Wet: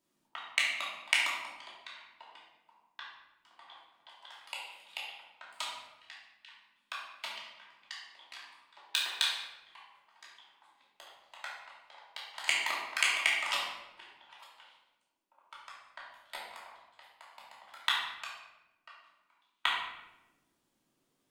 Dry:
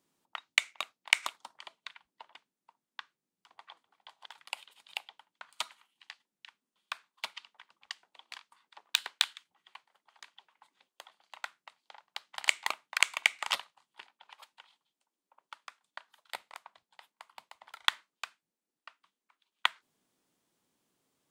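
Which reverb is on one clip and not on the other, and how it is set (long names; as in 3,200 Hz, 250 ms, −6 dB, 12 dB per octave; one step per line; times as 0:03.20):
rectangular room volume 450 cubic metres, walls mixed, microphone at 2.8 metres
level −6.5 dB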